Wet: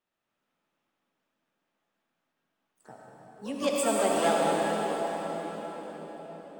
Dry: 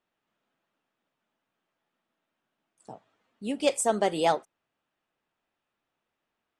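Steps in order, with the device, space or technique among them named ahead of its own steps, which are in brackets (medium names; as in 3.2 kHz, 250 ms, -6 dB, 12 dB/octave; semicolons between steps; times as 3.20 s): shimmer-style reverb (harmony voices +12 st -10 dB; reverberation RT60 5.8 s, pre-delay 55 ms, DRR -4 dB); trim -5 dB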